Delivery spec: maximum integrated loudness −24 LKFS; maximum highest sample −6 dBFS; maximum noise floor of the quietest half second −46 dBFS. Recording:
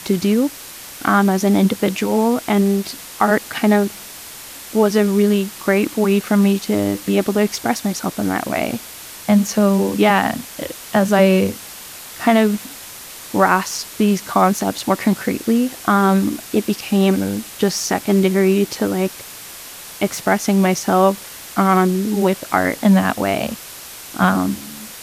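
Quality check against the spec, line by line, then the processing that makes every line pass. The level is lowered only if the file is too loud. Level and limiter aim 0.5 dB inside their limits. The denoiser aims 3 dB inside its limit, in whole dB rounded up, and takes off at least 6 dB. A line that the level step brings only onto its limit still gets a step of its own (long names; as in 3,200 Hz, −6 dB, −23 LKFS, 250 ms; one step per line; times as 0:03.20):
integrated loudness −17.5 LKFS: out of spec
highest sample −2.0 dBFS: out of spec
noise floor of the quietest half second −36 dBFS: out of spec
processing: broadband denoise 6 dB, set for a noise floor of −36 dBFS
level −7 dB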